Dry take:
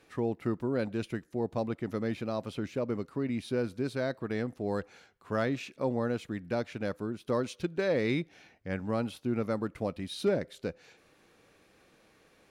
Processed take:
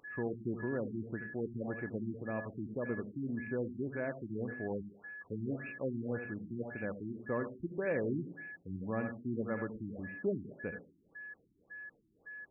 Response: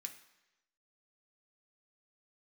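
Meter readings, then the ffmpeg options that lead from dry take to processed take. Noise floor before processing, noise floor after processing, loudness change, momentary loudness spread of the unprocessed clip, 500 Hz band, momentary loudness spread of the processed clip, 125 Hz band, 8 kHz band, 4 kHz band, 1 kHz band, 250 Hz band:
−64 dBFS, −71 dBFS, −6.0 dB, 7 LU, −6.5 dB, 11 LU, −5.0 dB, below −25 dB, below −35 dB, −8.5 dB, −5.0 dB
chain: -filter_complex "[0:a]aeval=exprs='val(0)+0.0141*sin(2*PI*1700*n/s)':channel_layout=same,asplit=2[link_01][link_02];[1:a]atrim=start_sample=2205,adelay=77[link_03];[link_02][link_03]afir=irnorm=-1:irlink=0,volume=1dB[link_04];[link_01][link_04]amix=inputs=2:normalize=0,afftfilt=real='re*lt(b*sr/1024,350*pow(2800/350,0.5+0.5*sin(2*PI*1.8*pts/sr)))':imag='im*lt(b*sr/1024,350*pow(2800/350,0.5+0.5*sin(2*PI*1.8*pts/sr)))':win_size=1024:overlap=0.75,volume=-6dB"

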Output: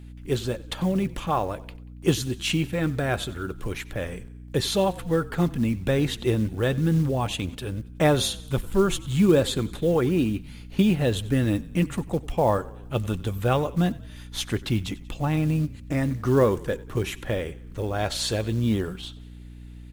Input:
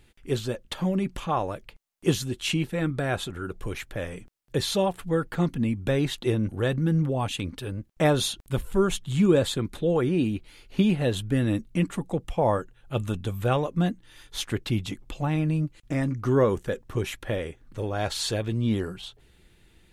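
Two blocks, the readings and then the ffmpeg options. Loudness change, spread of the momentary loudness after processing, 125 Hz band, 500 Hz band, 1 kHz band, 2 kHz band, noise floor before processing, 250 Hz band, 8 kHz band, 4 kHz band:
+1.5 dB, 12 LU, +1.5 dB, +1.5 dB, +1.5 dB, +1.5 dB, −59 dBFS, +1.5 dB, +2.0 dB, +1.5 dB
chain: -filter_complex "[0:a]acrusher=bits=7:mode=log:mix=0:aa=0.000001,asplit=5[link_01][link_02][link_03][link_04][link_05];[link_02]adelay=93,afreqshift=-34,volume=-20dB[link_06];[link_03]adelay=186,afreqshift=-68,volume=-25.8dB[link_07];[link_04]adelay=279,afreqshift=-102,volume=-31.7dB[link_08];[link_05]adelay=372,afreqshift=-136,volume=-37.5dB[link_09];[link_01][link_06][link_07][link_08][link_09]amix=inputs=5:normalize=0,aeval=exprs='val(0)+0.00794*(sin(2*PI*60*n/s)+sin(2*PI*2*60*n/s)/2+sin(2*PI*3*60*n/s)/3+sin(2*PI*4*60*n/s)/4+sin(2*PI*5*60*n/s)/5)':channel_layout=same,volume=1.5dB"

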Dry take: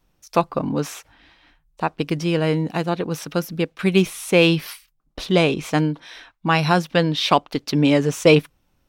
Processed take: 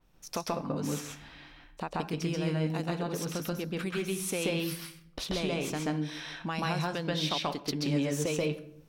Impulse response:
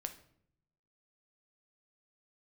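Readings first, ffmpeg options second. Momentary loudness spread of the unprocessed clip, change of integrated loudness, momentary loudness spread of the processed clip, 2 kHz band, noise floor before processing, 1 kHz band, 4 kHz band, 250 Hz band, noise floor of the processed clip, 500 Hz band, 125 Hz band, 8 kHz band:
11 LU, −12.5 dB, 10 LU, −13.0 dB, −66 dBFS, −13.5 dB, −10.0 dB, −11.5 dB, −57 dBFS, −13.5 dB, −10.5 dB, −4.0 dB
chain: -filter_complex "[0:a]acompressor=threshold=-36dB:ratio=3,asplit=2[link_01][link_02];[1:a]atrim=start_sample=2205,highshelf=frequency=6700:gain=-11,adelay=133[link_03];[link_02][link_03]afir=irnorm=-1:irlink=0,volume=4.5dB[link_04];[link_01][link_04]amix=inputs=2:normalize=0,adynamicequalizer=threshold=0.00355:dfrequency=4200:dqfactor=0.7:tfrequency=4200:tqfactor=0.7:attack=5:release=100:ratio=0.375:range=3.5:mode=boostabove:tftype=highshelf,volume=-2dB"

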